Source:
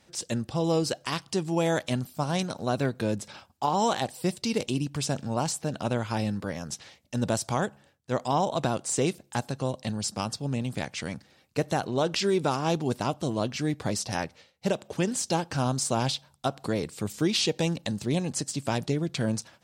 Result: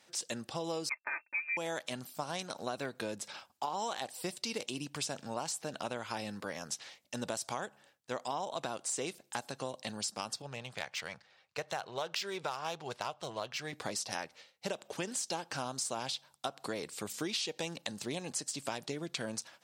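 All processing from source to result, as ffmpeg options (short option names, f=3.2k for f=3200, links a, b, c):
-filter_complex "[0:a]asettb=1/sr,asplit=3[a][b][c];[a]atrim=end=0.894[d];[b]atrim=start=0.89:end=1.57,asetpts=PTS-STARTPTS,afade=t=in:d=0.004:c=qsin,afade=t=out:st=0.676:d=0.004:c=qsin,aeval=exprs='sgn(val(0))*max(abs(val(0))-0.00335,0)':c=same,aecho=1:1:3.4:0.74,atrim=end_sample=29988,lowpass=f=2.3k:t=q:w=0.5098,lowpass=f=2.3k:t=q:w=0.6013,lowpass=f=2.3k:t=q:w=0.9,lowpass=f=2.3k:t=q:w=2.563,afreqshift=-2700[e];[c]atrim=start=1.566[f];[d][e]acrossfade=d=0.004:c1=hsin:c2=qsin[g];[g][f]acrossfade=d=0.004:c1=qsin:c2=hsin,asettb=1/sr,asplit=3[h][i][j];[h]atrim=end=10.424[k];[i]atrim=start=10.42:end=13.73,asetpts=PTS-STARTPTS,afade=t=in:d=0.004:c=qsin,afade=t=out:st=3.306:d=0.004:c=qsin,adynamicsmooth=sensitivity=6:basefreq=4.6k,equalizer=f=270:w=1.5:g=-14.5[l];[j]atrim=start=13.726[m];[k][l]acrossfade=d=0.004:c1=hsin:c2=qsin[n];[n][m]acrossfade=d=0.004:c1=qsin:c2=hsin,highpass=f=700:p=1,acompressor=threshold=-34dB:ratio=4"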